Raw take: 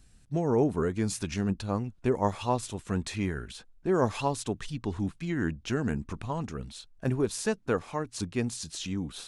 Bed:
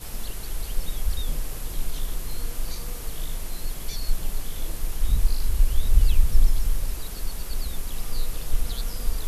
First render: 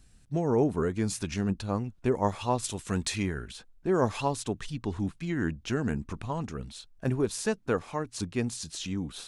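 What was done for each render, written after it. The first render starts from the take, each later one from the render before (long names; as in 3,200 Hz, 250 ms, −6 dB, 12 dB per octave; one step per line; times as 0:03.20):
0:02.64–0:03.23: high-shelf EQ 2,500 Hz +8.5 dB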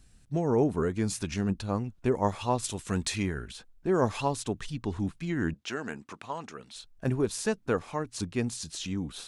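0:05.54–0:06.76: meter weighting curve A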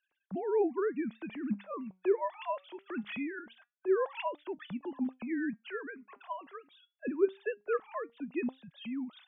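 three sine waves on the formant tracks
flanger 0.22 Hz, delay 3.2 ms, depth 2.5 ms, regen +88%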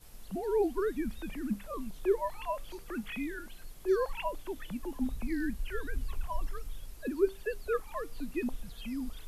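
mix in bed −18 dB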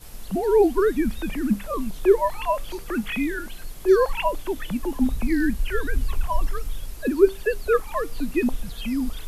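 level +11.5 dB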